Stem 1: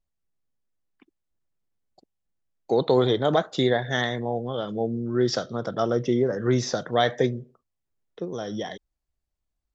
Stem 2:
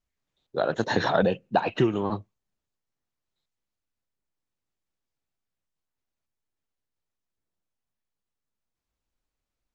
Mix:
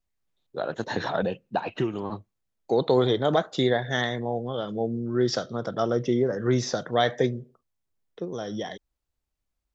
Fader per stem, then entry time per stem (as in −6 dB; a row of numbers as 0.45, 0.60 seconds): −1.0, −4.5 decibels; 0.00, 0.00 seconds